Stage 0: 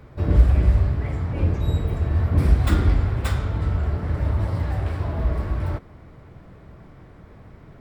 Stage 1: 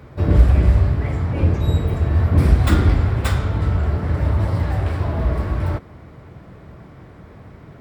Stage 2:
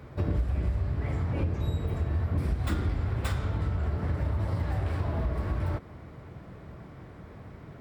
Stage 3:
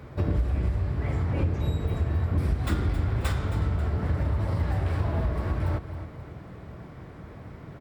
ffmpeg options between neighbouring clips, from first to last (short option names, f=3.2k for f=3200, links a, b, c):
-af "highpass=56,volume=5dB"
-af "acompressor=threshold=-21dB:ratio=5,volume=-4.5dB"
-af "aecho=1:1:269|538|807|1076:0.237|0.0996|0.0418|0.0176,volume=2.5dB"